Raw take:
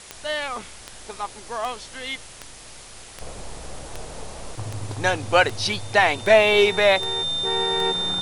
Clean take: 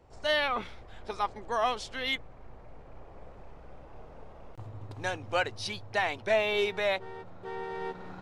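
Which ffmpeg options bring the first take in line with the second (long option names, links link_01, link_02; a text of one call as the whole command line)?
ffmpeg -i in.wav -af "adeclick=threshold=4,bandreject=frequency=3600:width=30,afwtdn=0.0089,asetnsamples=nb_out_samples=441:pad=0,asendcmd='3.21 volume volume -11.5dB',volume=0dB" out.wav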